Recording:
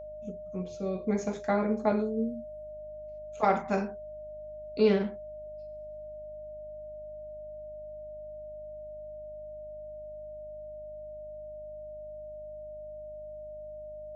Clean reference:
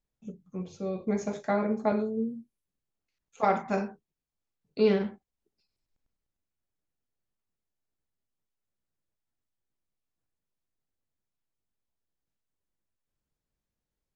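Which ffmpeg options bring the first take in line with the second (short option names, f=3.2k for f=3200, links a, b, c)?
-af "bandreject=f=51.3:t=h:w=4,bandreject=f=102.6:t=h:w=4,bandreject=f=153.9:t=h:w=4,bandreject=f=205.2:t=h:w=4,bandreject=f=256.5:t=h:w=4,bandreject=f=610:w=30"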